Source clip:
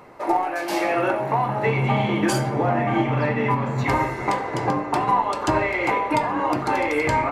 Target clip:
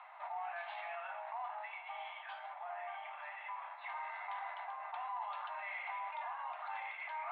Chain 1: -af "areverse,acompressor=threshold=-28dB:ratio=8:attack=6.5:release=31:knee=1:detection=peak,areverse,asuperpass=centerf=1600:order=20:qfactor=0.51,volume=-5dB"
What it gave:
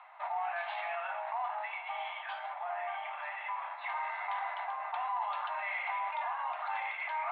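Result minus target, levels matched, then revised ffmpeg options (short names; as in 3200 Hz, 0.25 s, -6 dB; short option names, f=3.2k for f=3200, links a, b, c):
compressor: peak gain reduction -7 dB
-af "areverse,acompressor=threshold=-36dB:ratio=8:attack=6.5:release=31:knee=1:detection=peak,areverse,asuperpass=centerf=1600:order=20:qfactor=0.51,volume=-5dB"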